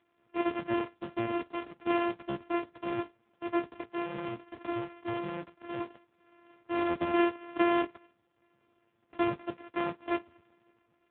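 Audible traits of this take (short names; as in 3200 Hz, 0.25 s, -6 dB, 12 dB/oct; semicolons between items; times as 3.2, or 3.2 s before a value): a buzz of ramps at a fixed pitch in blocks of 128 samples; AMR-NB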